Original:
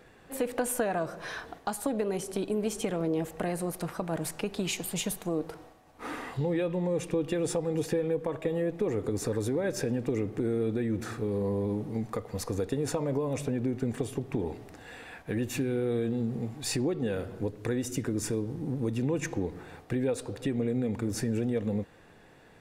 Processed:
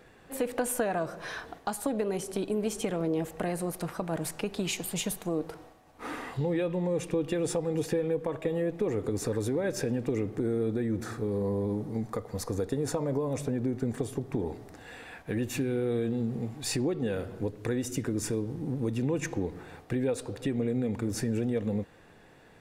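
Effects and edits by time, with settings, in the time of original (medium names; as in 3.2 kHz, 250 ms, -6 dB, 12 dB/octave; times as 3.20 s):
10.35–14.75 s: peaking EQ 2.7 kHz -6 dB 0.61 oct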